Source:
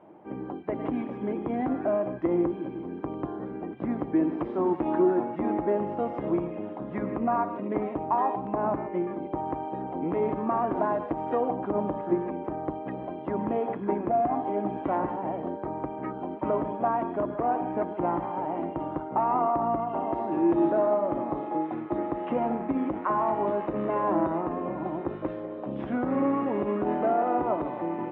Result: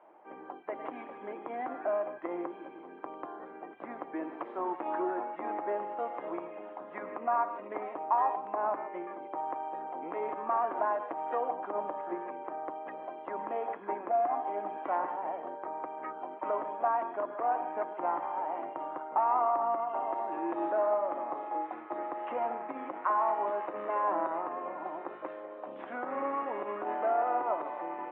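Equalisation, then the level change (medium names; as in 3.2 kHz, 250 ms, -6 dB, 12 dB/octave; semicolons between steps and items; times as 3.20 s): high-pass 720 Hz 12 dB/octave; low-pass 2.5 kHz 12 dB/octave; 0.0 dB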